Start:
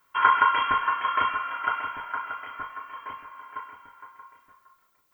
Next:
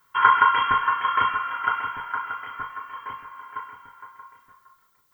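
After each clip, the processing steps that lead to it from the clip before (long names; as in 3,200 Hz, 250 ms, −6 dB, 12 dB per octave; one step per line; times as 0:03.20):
thirty-one-band graphic EQ 125 Hz +5 dB, 315 Hz −6 dB, 630 Hz −10 dB, 2,500 Hz −6 dB
level +3.5 dB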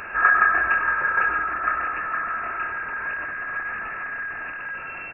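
converter with a step at zero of −23.5 dBFS
on a send: single-tap delay 95 ms −10.5 dB
on the sum: voice inversion scrambler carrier 2,700 Hz
level −2.5 dB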